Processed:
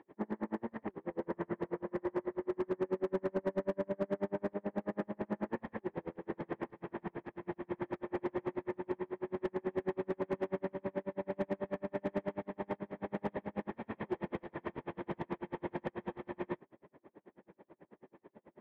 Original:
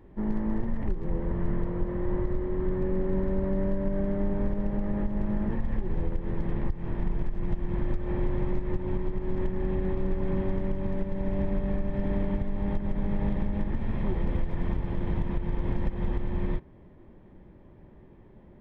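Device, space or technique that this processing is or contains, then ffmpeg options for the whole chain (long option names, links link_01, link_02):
helicopter radio: -af "highpass=350,lowpass=2600,aeval=exprs='val(0)*pow(10,-39*(0.5-0.5*cos(2*PI*9.2*n/s))/20)':channel_layout=same,asoftclip=type=hard:threshold=-32.5dB,volume=6dB"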